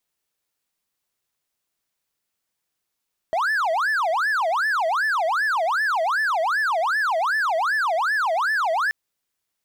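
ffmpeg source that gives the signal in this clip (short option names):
-f lavfi -i "aevalsrc='0.141*(1-4*abs(mod((1198.5*t-561.5/(2*PI*2.6)*sin(2*PI*2.6*t))+0.25,1)-0.5))':d=5.58:s=44100"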